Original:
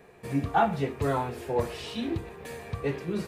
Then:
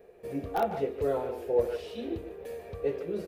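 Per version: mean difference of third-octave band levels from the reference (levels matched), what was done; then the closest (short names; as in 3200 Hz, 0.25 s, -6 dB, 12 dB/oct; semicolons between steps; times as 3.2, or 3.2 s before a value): 6.0 dB: in parallel at -5.5 dB: wrapped overs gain 13 dB; on the sum: graphic EQ 125/250/500/1000/2000/4000/8000 Hz -11/-5/+9/-10/-6/-5/-9 dB; speakerphone echo 0.15 s, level -9 dB; gain -5.5 dB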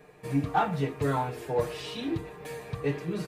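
1.5 dB: comb 6.6 ms, depth 61%; in parallel at -8 dB: hard clip -20.5 dBFS, distortion -13 dB; on the sum: gain -4.5 dB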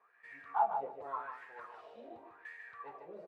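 14.0 dB: low shelf 430 Hz -7 dB; wah 0.88 Hz 560–1900 Hz, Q 9.4; on a send: feedback echo 0.148 s, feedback 16%, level -7 dB; on the sum: gain +2.5 dB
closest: second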